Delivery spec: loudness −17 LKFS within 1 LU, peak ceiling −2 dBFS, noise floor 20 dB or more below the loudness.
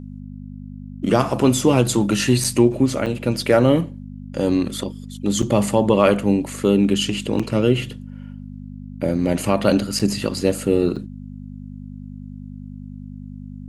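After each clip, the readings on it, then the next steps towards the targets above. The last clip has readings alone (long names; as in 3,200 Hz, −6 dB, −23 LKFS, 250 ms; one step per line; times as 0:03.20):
number of dropouts 6; longest dropout 5.4 ms; mains hum 50 Hz; hum harmonics up to 250 Hz; level of the hum −32 dBFS; integrated loudness −19.5 LKFS; sample peak −1.5 dBFS; target loudness −17.0 LKFS
→ repair the gap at 0:02.44/0:03.06/0:05.42/0:07.39/0:09.99/0:10.96, 5.4 ms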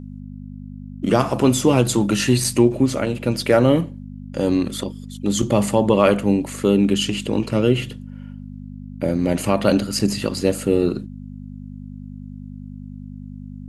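number of dropouts 0; mains hum 50 Hz; hum harmonics up to 250 Hz; level of the hum −32 dBFS
→ hum removal 50 Hz, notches 5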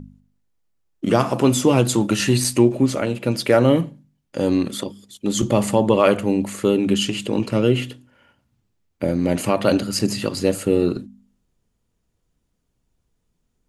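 mains hum none found; integrated loudness −19.5 LKFS; sample peak −2.0 dBFS; target loudness −17.0 LKFS
→ level +2.5 dB
brickwall limiter −2 dBFS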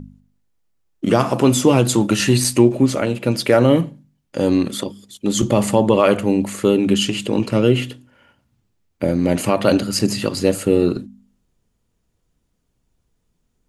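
integrated loudness −17.5 LKFS; sample peak −2.0 dBFS; background noise floor −70 dBFS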